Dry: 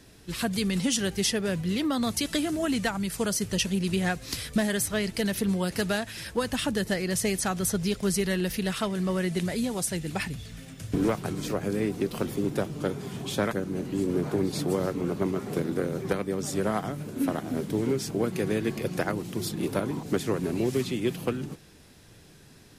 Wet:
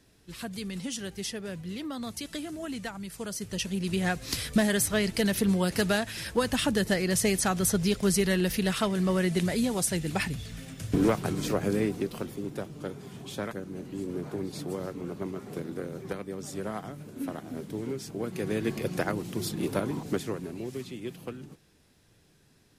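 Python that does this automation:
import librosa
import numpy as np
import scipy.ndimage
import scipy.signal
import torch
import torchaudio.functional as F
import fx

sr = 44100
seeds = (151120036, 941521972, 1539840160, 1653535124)

y = fx.gain(x, sr, db=fx.line((3.22, -9.0), (4.32, 1.5), (11.75, 1.5), (12.34, -7.5), (18.14, -7.5), (18.67, -1.0), (20.05, -1.0), (20.54, -10.0)))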